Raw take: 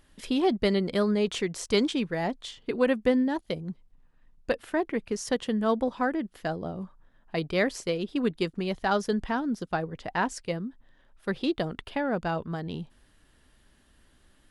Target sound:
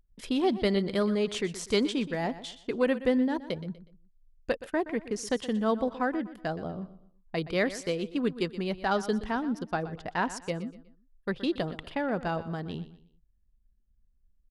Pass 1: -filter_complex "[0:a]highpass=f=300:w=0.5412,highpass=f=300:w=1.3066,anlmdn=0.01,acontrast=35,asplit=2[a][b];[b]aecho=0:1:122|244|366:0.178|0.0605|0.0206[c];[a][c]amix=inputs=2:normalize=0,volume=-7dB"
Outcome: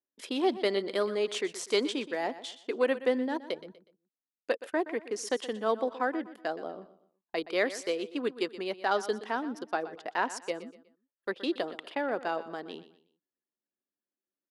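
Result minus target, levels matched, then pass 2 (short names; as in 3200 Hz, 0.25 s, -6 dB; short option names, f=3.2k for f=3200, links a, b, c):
250 Hz band -4.0 dB
-filter_complex "[0:a]anlmdn=0.01,acontrast=35,asplit=2[a][b];[b]aecho=0:1:122|244|366:0.178|0.0605|0.0206[c];[a][c]amix=inputs=2:normalize=0,volume=-7dB"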